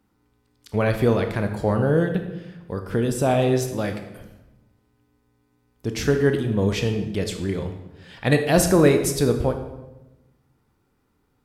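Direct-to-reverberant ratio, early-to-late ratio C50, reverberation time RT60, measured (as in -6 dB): 6.0 dB, 8.5 dB, 1.0 s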